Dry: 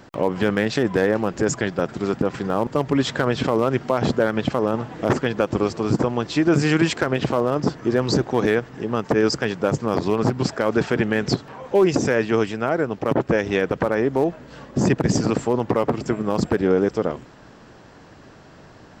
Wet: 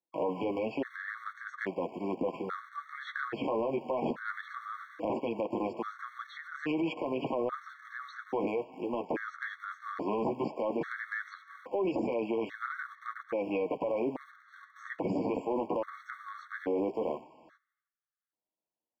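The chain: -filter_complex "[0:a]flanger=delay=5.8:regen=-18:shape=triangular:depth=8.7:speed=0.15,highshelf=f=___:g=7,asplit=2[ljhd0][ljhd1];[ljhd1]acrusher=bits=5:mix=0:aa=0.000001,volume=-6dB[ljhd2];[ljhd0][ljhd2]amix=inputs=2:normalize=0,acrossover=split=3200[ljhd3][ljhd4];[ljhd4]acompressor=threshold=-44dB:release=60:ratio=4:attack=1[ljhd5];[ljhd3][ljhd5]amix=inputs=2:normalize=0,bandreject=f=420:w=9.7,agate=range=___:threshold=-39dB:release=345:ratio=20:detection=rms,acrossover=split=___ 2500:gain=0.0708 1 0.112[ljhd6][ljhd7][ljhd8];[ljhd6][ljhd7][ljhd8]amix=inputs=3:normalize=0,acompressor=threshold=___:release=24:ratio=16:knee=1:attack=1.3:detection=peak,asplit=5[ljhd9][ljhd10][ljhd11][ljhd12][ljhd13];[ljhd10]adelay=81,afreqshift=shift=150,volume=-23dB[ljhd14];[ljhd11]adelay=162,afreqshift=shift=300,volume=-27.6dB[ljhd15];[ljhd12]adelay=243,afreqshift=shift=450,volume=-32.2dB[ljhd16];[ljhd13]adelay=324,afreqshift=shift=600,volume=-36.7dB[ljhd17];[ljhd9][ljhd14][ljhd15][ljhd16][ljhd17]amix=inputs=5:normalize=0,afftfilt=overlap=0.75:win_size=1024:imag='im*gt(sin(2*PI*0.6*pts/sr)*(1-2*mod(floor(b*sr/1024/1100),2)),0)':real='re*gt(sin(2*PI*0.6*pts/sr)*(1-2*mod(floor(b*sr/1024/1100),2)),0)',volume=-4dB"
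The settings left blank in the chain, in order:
3600, -41dB, 240, -22dB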